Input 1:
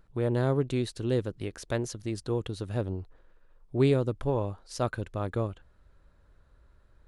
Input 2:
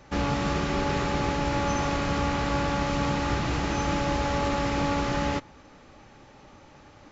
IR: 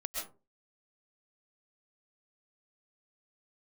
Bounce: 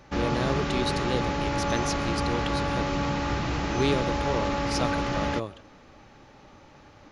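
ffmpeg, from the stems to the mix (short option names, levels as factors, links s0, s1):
-filter_complex "[0:a]highpass=150,equalizer=f=4700:w=0.46:g=12.5,acontrast=33,volume=0.376,asplit=2[s0][s1];[s1]volume=0.119[s2];[1:a]asoftclip=type=tanh:threshold=0.188,volume=0.944[s3];[2:a]atrim=start_sample=2205[s4];[s2][s4]afir=irnorm=-1:irlink=0[s5];[s0][s3][s5]amix=inputs=3:normalize=0,equalizer=f=8000:t=o:w=0.26:g=-10"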